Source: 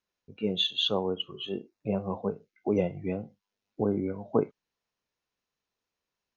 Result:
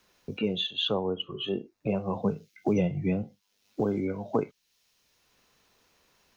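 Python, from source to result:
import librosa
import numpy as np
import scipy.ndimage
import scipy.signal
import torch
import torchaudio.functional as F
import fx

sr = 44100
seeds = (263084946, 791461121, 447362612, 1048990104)

y = fx.peak_eq(x, sr, hz=140.0, db=11.5, octaves=1.3, at=(2.15, 3.23))
y = fx.band_squash(y, sr, depth_pct=70)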